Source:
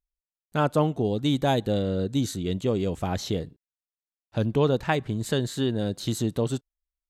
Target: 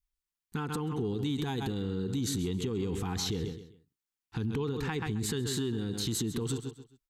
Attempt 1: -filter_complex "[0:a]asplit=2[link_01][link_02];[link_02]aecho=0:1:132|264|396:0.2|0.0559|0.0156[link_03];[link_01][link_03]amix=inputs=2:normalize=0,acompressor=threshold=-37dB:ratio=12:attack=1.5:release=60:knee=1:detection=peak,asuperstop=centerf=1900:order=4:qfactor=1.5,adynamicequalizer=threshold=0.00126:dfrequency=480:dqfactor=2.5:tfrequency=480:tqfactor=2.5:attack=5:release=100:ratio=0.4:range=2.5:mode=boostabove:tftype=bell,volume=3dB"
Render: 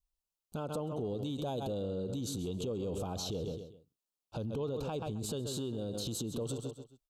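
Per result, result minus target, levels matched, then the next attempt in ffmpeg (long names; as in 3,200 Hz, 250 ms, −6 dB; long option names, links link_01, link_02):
2,000 Hz band −9.5 dB; downward compressor: peak gain reduction +6 dB
-filter_complex "[0:a]asplit=2[link_01][link_02];[link_02]aecho=0:1:132|264|396:0.2|0.0559|0.0156[link_03];[link_01][link_03]amix=inputs=2:normalize=0,acompressor=threshold=-37dB:ratio=12:attack=1.5:release=60:knee=1:detection=peak,asuperstop=centerf=590:order=4:qfactor=1.5,adynamicequalizer=threshold=0.00126:dfrequency=480:dqfactor=2.5:tfrequency=480:tqfactor=2.5:attack=5:release=100:ratio=0.4:range=2.5:mode=boostabove:tftype=bell,volume=3dB"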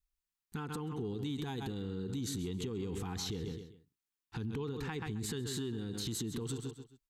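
downward compressor: peak gain reduction +6 dB
-filter_complex "[0:a]asplit=2[link_01][link_02];[link_02]aecho=0:1:132|264|396:0.2|0.0559|0.0156[link_03];[link_01][link_03]amix=inputs=2:normalize=0,acompressor=threshold=-30.5dB:ratio=12:attack=1.5:release=60:knee=1:detection=peak,asuperstop=centerf=590:order=4:qfactor=1.5,adynamicequalizer=threshold=0.00126:dfrequency=480:dqfactor=2.5:tfrequency=480:tqfactor=2.5:attack=5:release=100:ratio=0.4:range=2.5:mode=boostabove:tftype=bell,volume=3dB"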